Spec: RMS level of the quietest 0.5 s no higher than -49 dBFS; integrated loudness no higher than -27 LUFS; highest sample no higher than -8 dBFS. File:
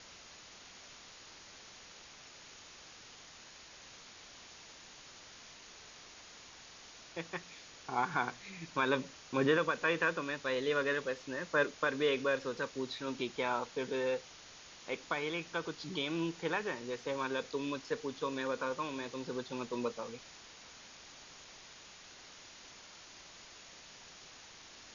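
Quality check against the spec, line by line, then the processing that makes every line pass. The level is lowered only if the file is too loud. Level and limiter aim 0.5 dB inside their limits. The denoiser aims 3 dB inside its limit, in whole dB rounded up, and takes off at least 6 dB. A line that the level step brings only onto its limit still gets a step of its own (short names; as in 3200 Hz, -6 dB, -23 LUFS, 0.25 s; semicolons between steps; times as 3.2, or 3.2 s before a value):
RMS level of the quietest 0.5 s -55 dBFS: OK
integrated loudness -36.0 LUFS: OK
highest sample -17.5 dBFS: OK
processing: none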